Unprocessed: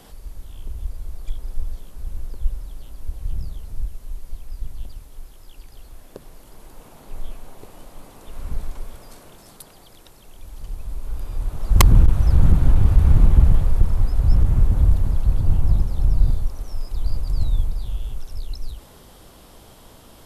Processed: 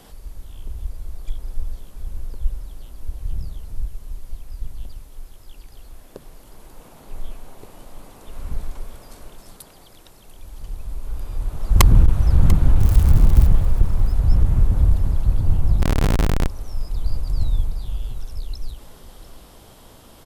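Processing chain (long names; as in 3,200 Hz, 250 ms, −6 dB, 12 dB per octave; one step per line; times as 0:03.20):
0:12.79–0:13.47: spike at every zero crossing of −17.5 dBFS
single-tap delay 693 ms −16.5 dB
0:15.82–0:16.48: comparator with hysteresis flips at −32.5 dBFS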